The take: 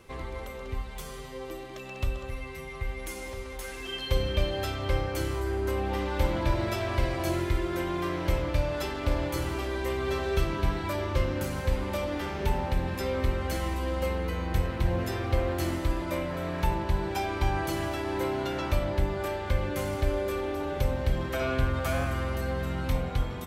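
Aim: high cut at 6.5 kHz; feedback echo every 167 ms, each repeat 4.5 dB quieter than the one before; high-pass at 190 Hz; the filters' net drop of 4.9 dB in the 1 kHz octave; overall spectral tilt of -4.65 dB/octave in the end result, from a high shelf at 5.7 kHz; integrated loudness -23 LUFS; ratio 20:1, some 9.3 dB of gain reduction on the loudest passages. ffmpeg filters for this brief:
-af "highpass=190,lowpass=6500,equalizer=f=1000:t=o:g=-6.5,highshelf=f=5700:g=5,acompressor=threshold=0.0141:ratio=20,aecho=1:1:167|334|501|668|835|1002|1169|1336|1503:0.596|0.357|0.214|0.129|0.0772|0.0463|0.0278|0.0167|0.01,volume=6.68"

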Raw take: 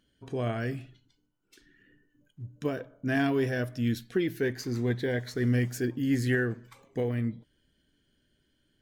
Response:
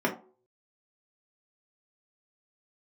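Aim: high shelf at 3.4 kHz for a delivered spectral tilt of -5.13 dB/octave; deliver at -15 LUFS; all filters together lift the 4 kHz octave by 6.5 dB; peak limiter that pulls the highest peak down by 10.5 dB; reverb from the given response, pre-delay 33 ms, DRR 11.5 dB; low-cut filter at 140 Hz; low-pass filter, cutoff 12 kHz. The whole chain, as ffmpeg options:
-filter_complex "[0:a]highpass=140,lowpass=12000,highshelf=f=3400:g=5,equalizer=f=4000:t=o:g=5,alimiter=limit=0.0631:level=0:latency=1,asplit=2[s0][s1];[1:a]atrim=start_sample=2205,adelay=33[s2];[s1][s2]afir=irnorm=-1:irlink=0,volume=0.0668[s3];[s0][s3]amix=inputs=2:normalize=0,volume=8.91"

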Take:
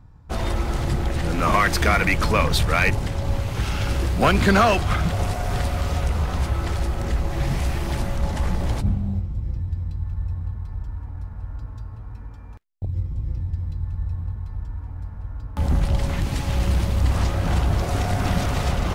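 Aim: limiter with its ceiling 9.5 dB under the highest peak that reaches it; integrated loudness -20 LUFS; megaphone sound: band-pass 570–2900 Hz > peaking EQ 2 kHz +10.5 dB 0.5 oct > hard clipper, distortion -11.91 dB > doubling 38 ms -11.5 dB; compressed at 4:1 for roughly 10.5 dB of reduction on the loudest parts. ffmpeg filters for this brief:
-filter_complex "[0:a]acompressor=threshold=0.0447:ratio=4,alimiter=level_in=1.06:limit=0.0631:level=0:latency=1,volume=0.944,highpass=570,lowpass=2900,equalizer=f=2000:t=o:w=0.5:g=10.5,asoftclip=type=hard:threshold=0.0282,asplit=2[s0][s1];[s1]adelay=38,volume=0.266[s2];[s0][s2]amix=inputs=2:normalize=0,volume=8.41"

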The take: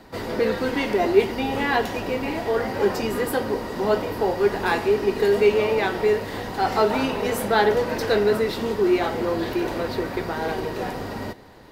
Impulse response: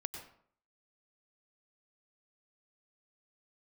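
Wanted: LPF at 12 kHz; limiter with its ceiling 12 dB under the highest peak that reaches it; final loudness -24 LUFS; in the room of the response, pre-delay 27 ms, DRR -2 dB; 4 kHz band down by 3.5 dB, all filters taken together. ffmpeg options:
-filter_complex "[0:a]lowpass=12000,equalizer=f=4000:t=o:g=-4.5,alimiter=limit=0.141:level=0:latency=1,asplit=2[s0][s1];[1:a]atrim=start_sample=2205,adelay=27[s2];[s1][s2]afir=irnorm=-1:irlink=0,volume=1.41[s3];[s0][s3]amix=inputs=2:normalize=0,volume=0.794"

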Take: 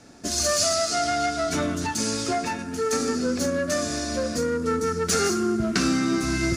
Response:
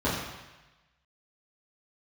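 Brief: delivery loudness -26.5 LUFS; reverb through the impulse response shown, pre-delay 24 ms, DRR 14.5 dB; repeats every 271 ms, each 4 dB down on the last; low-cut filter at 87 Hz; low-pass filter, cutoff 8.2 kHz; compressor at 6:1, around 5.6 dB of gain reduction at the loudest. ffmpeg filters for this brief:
-filter_complex "[0:a]highpass=87,lowpass=8200,acompressor=threshold=0.0562:ratio=6,aecho=1:1:271|542|813|1084|1355|1626|1897|2168|2439:0.631|0.398|0.25|0.158|0.0994|0.0626|0.0394|0.0249|0.0157,asplit=2[s0][s1];[1:a]atrim=start_sample=2205,adelay=24[s2];[s1][s2]afir=irnorm=-1:irlink=0,volume=0.0422[s3];[s0][s3]amix=inputs=2:normalize=0,volume=0.944"

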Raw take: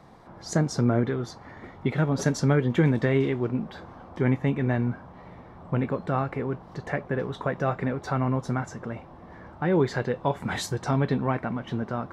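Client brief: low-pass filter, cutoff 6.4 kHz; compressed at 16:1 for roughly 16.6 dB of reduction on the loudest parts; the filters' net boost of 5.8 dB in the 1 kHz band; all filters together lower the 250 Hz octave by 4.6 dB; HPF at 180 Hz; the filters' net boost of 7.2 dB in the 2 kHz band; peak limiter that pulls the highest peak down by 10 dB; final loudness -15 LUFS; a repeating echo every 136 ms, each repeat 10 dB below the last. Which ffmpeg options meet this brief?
-af "highpass=180,lowpass=6400,equalizer=f=250:t=o:g=-4.5,equalizer=f=1000:t=o:g=6,equalizer=f=2000:t=o:g=7,acompressor=threshold=0.02:ratio=16,alimiter=level_in=1.78:limit=0.0631:level=0:latency=1,volume=0.562,aecho=1:1:136|272|408|544:0.316|0.101|0.0324|0.0104,volume=20"

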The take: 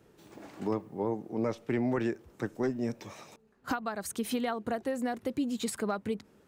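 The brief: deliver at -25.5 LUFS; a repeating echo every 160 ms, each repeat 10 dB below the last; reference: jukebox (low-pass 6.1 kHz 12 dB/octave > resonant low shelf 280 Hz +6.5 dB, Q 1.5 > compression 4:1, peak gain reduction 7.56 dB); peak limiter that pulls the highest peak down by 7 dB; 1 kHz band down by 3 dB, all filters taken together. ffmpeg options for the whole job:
-af "equalizer=f=1000:t=o:g=-3.5,alimiter=level_in=1.58:limit=0.0631:level=0:latency=1,volume=0.631,lowpass=6100,lowshelf=f=280:t=q:w=1.5:g=6.5,aecho=1:1:160|320|480|640:0.316|0.101|0.0324|0.0104,acompressor=threshold=0.02:ratio=4,volume=4.47"

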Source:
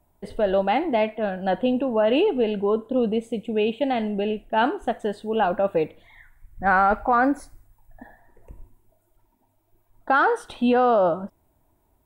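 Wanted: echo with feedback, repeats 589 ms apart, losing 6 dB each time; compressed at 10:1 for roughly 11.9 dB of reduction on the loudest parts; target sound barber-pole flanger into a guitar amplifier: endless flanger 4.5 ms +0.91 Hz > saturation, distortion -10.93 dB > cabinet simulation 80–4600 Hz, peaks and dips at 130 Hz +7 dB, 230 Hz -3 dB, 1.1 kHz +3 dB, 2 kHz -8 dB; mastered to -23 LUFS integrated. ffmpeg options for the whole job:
-filter_complex "[0:a]acompressor=threshold=0.0398:ratio=10,aecho=1:1:589|1178|1767|2356|2945|3534:0.501|0.251|0.125|0.0626|0.0313|0.0157,asplit=2[s0][s1];[s1]adelay=4.5,afreqshift=0.91[s2];[s0][s2]amix=inputs=2:normalize=1,asoftclip=threshold=0.0224,highpass=80,equalizer=f=130:t=q:w=4:g=7,equalizer=f=230:t=q:w=4:g=-3,equalizer=f=1100:t=q:w=4:g=3,equalizer=f=2000:t=q:w=4:g=-8,lowpass=f=4600:w=0.5412,lowpass=f=4600:w=1.3066,volume=6.68"

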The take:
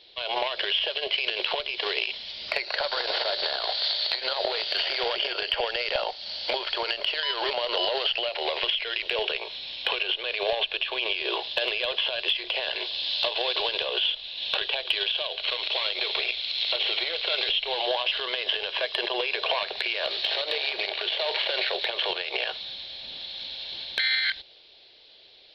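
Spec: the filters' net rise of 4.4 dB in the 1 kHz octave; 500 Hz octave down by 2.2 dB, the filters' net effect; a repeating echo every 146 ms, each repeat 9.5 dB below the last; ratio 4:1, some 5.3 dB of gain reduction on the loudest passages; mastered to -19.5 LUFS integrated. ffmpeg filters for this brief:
-af "equalizer=f=500:t=o:g=-5.5,equalizer=f=1000:t=o:g=7.5,acompressor=threshold=0.0398:ratio=4,aecho=1:1:146|292|438|584:0.335|0.111|0.0365|0.012,volume=3.16"

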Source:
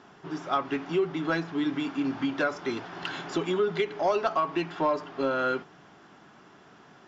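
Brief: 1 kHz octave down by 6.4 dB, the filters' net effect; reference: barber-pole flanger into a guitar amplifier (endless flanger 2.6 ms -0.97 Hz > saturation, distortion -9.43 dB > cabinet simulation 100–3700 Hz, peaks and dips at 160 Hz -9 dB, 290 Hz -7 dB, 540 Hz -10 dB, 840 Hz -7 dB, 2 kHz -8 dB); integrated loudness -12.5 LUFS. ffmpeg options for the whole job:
-filter_complex "[0:a]equalizer=f=1000:t=o:g=-5,asplit=2[s0][s1];[s1]adelay=2.6,afreqshift=-0.97[s2];[s0][s2]amix=inputs=2:normalize=1,asoftclip=threshold=0.0299,highpass=100,equalizer=f=160:t=q:w=4:g=-9,equalizer=f=290:t=q:w=4:g=-7,equalizer=f=540:t=q:w=4:g=-10,equalizer=f=840:t=q:w=4:g=-7,equalizer=f=2000:t=q:w=4:g=-8,lowpass=f=3700:w=0.5412,lowpass=f=3700:w=1.3066,volume=28.2"

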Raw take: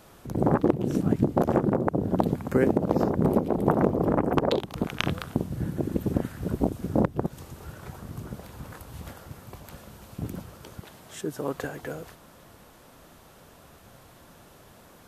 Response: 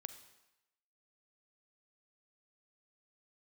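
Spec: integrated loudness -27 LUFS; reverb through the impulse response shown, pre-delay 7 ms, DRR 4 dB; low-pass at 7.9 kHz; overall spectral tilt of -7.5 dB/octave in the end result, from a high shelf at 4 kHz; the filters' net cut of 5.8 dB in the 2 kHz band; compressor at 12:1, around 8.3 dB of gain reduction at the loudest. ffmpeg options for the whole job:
-filter_complex "[0:a]lowpass=7900,equalizer=f=2000:t=o:g=-9,highshelf=f=4000:g=3.5,acompressor=threshold=0.0562:ratio=12,asplit=2[s0][s1];[1:a]atrim=start_sample=2205,adelay=7[s2];[s1][s2]afir=irnorm=-1:irlink=0,volume=1[s3];[s0][s3]amix=inputs=2:normalize=0,volume=1.78"

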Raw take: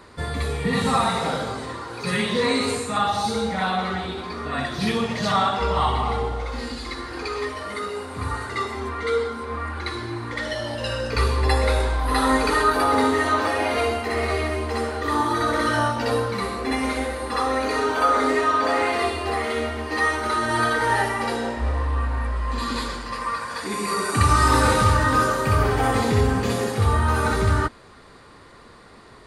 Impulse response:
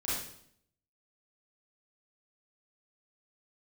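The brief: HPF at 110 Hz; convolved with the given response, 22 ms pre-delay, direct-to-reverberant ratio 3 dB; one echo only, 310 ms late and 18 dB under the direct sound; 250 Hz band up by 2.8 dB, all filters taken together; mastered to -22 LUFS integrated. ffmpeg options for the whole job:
-filter_complex "[0:a]highpass=110,equalizer=f=250:t=o:g=3.5,aecho=1:1:310:0.126,asplit=2[s0][s1];[1:a]atrim=start_sample=2205,adelay=22[s2];[s1][s2]afir=irnorm=-1:irlink=0,volume=0.398[s3];[s0][s3]amix=inputs=2:normalize=0,volume=0.891"

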